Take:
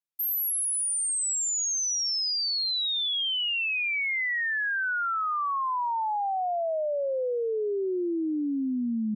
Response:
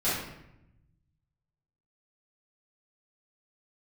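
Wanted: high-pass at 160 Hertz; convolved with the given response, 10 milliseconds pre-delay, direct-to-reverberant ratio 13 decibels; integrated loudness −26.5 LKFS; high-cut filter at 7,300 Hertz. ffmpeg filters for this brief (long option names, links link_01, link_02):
-filter_complex "[0:a]highpass=160,lowpass=7300,asplit=2[link_01][link_02];[1:a]atrim=start_sample=2205,adelay=10[link_03];[link_02][link_03]afir=irnorm=-1:irlink=0,volume=-24dB[link_04];[link_01][link_04]amix=inputs=2:normalize=0,volume=0.5dB"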